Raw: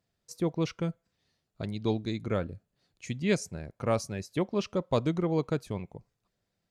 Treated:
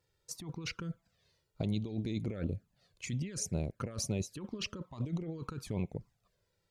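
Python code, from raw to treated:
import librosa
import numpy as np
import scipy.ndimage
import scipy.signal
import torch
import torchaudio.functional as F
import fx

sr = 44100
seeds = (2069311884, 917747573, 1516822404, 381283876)

y = fx.over_compress(x, sr, threshold_db=-36.0, ratio=-1.0)
y = fx.env_flanger(y, sr, rest_ms=2.2, full_db=-30.5)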